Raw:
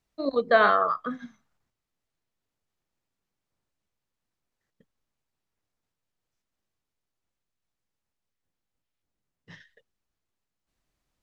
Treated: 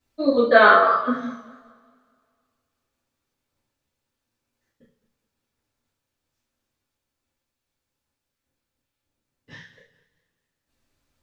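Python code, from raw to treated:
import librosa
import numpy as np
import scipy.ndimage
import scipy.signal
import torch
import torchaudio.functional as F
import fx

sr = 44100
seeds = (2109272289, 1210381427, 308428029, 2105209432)

y = fx.rev_double_slope(x, sr, seeds[0], early_s=0.43, late_s=2.2, knee_db=-27, drr_db=-10.0)
y = fx.echo_warbled(y, sr, ms=208, feedback_pct=33, rate_hz=2.8, cents=126, wet_db=-17.5)
y = y * 10.0 ** (-3.5 / 20.0)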